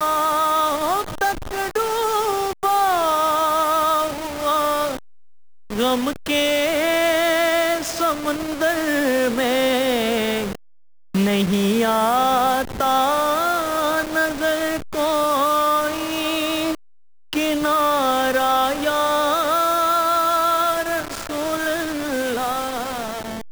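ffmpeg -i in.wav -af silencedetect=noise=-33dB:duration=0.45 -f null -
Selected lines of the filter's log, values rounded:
silence_start: 4.98
silence_end: 5.70 | silence_duration: 0.72
silence_start: 10.55
silence_end: 11.15 | silence_duration: 0.59
silence_start: 16.75
silence_end: 17.33 | silence_duration: 0.58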